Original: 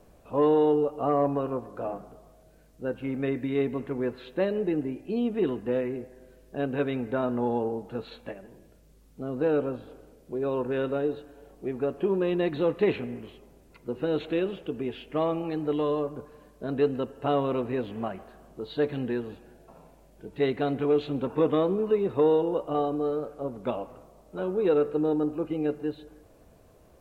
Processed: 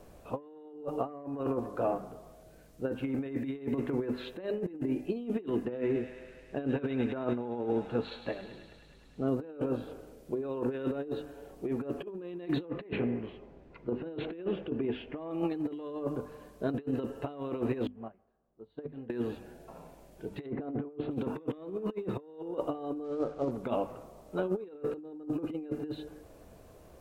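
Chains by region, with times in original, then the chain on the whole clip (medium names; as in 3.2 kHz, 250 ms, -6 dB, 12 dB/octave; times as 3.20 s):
5.65–9.28 s: distance through air 59 m + feedback echo behind a high-pass 104 ms, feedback 79%, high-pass 1.9 kHz, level -8.5 dB
12.65–15.31 s: low-pass 2.4 kHz + band-stop 1.3 kHz, Q 24
17.87–19.10 s: low-pass 1.1 kHz 6 dB/octave + doubling 18 ms -10.5 dB + upward expansion 2.5:1, over -38 dBFS
20.46–21.11 s: low-pass 1.2 kHz + de-hum 70.51 Hz, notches 2
23.04–23.51 s: companded quantiser 6-bit + distance through air 120 m
whole clip: hum notches 50/100/150/200/250 Hz; dynamic bell 310 Hz, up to +5 dB, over -38 dBFS, Q 2.4; compressor with a negative ratio -30 dBFS, ratio -0.5; trim -3 dB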